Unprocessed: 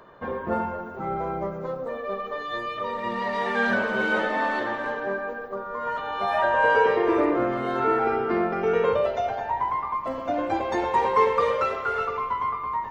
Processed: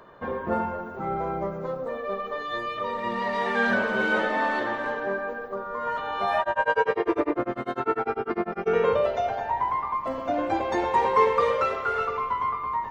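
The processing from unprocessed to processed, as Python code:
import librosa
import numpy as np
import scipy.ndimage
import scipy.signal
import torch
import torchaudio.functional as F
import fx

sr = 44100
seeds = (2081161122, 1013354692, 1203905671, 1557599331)

y = fx.tremolo(x, sr, hz=10.0, depth=0.99, at=(6.38, 8.66), fade=0.02)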